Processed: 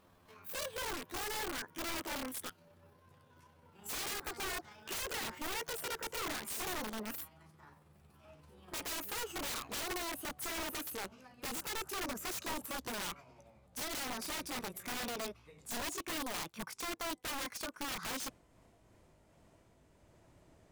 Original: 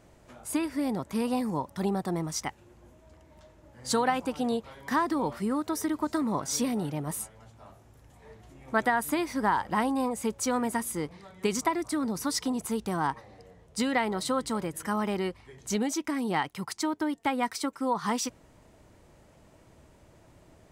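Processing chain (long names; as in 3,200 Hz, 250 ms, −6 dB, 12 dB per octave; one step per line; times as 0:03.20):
pitch glide at a constant tempo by +10 semitones ending unshifted
wrap-around overflow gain 27.5 dB
level −7 dB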